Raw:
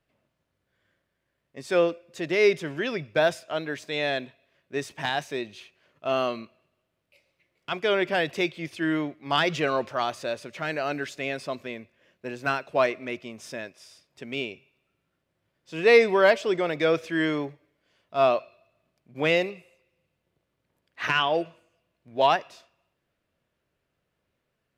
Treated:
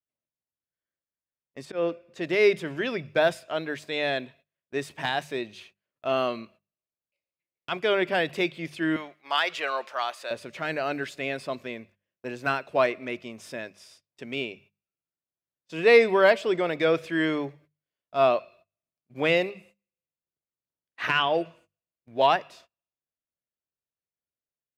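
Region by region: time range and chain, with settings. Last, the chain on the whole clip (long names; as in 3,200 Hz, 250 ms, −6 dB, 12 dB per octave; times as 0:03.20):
0:01.65–0:02.21: high-shelf EQ 5,100 Hz −12 dB + volume swells 172 ms
0:08.96–0:10.31: high-pass filter 730 Hz + de-essing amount 50%
whole clip: noise gate −53 dBFS, range −25 dB; mains-hum notches 50/100/150/200 Hz; dynamic equaliser 6,000 Hz, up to −6 dB, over −54 dBFS, Q 3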